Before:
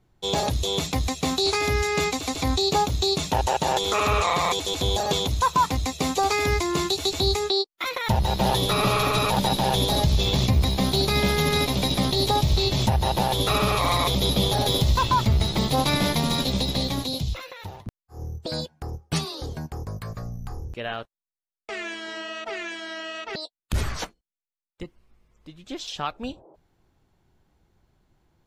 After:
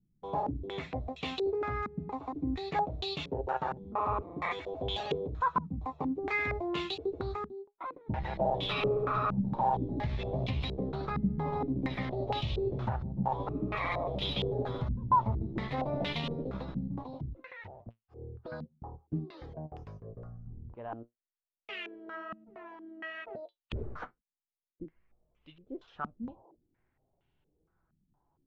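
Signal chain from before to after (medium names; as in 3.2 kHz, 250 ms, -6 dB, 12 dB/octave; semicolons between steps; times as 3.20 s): flange 0.36 Hz, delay 6 ms, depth 3 ms, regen +66%; step-sequenced low-pass 4.3 Hz 210–2900 Hz; trim -8.5 dB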